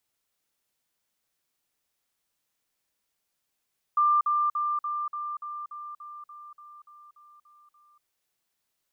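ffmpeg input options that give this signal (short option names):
-f lavfi -i "aevalsrc='pow(10,(-18.5-3*floor(t/0.29))/20)*sin(2*PI*1190*t)*clip(min(mod(t,0.29),0.24-mod(t,0.29))/0.005,0,1)':d=4.06:s=44100"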